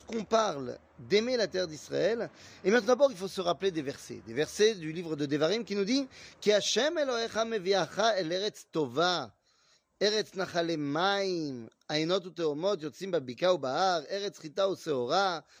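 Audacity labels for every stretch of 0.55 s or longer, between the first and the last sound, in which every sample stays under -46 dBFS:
9.280000	10.010000	silence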